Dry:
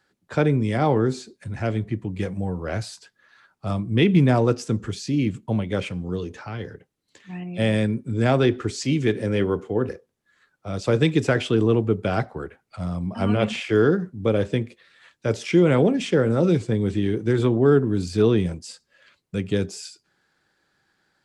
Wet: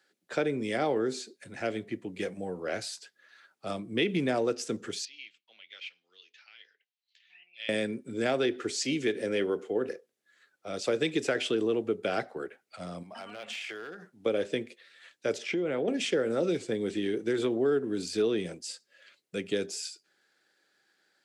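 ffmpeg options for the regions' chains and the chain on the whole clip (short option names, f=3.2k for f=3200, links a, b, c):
-filter_complex "[0:a]asettb=1/sr,asplit=3[a][b][c];[a]atrim=end=5.054[d];[b]atrim=start=5.05:end=7.69,asetpts=PTS-STARTPTS,afade=t=in:d=0.004:c=qsin,afade=t=out:st=2.636:d=0.004:c=qsin,asuperpass=centerf=3700:order=4:qfactor=1.2,aemphasis=mode=reproduction:type=riaa[e];[c]atrim=start=7.686[f];[d][e]acrossfade=d=0.004:c1=hsin:c2=qsin[g];[g][f]acrossfade=d=0.004:c1=qsin:c2=hsin,asettb=1/sr,asplit=3[h][i][j];[h]atrim=end=13.034[k];[i]atrim=start=13.03:end=14.26,asetpts=PTS-STARTPTS,afade=t=in:d=0.004:c=qsin,afade=t=out:st=1.226:d=0.004:c=qsin,lowshelf=f=580:t=q:w=1.5:g=-8.5,acompressor=threshold=-33dB:ratio=8:attack=3.2:release=140:knee=1:detection=peak,aeval=exprs='clip(val(0),-1,0.0282)':c=same[l];[j]atrim=start=14.256[m];[k][l]acrossfade=d=0.004:c1=hsin:c2=qsin[n];[n][m]acrossfade=d=0.004:c1=qsin:c2=hsin,asettb=1/sr,asplit=3[o][p][q];[o]atrim=end=15.384[r];[p]atrim=start=15.38:end=15.88,asetpts=PTS-STARTPTS,afade=t=in:d=0.004:c=qsin,afade=t=out:st=0.496:d=0.004:c=qsin,aemphasis=mode=reproduction:type=75fm,acompressor=threshold=-20dB:ratio=5:attack=3.2:release=140:knee=1:detection=peak[s];[q]atrim=start=15.876[t];[r][s]acrossfade=d=0.004:c1=hsin:c2=qsin[u];[u][t]acrossfade=d=0.004:c1=qsin:c2=hsin,highpass=380,equalizer=f=1k:t=o:w=0.82:g=-9.5,acompressor=threshold=-25dB:ratio=2.5"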